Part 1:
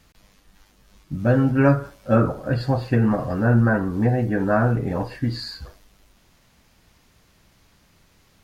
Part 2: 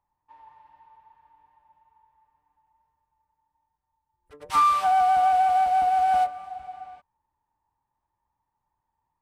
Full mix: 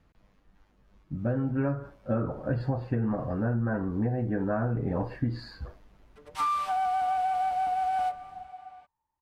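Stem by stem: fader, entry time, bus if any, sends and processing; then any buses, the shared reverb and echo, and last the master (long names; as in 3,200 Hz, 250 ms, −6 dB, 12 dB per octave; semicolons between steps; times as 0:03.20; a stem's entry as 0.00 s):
−3.5 dB, 0.00 s, no send, high-shelf EQ 2,700 Hz −10.5 dB
−9.0 dB, 1.85 s, no send, high-shelf EQ 2,700 Hz +9 dB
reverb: not used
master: speech leveller within 3 dB 0.5 s; high-shelf EQ 3,600 Hz −10 dB; downward compressor, threshold −24 dBFS, peak gain reduction 8 dB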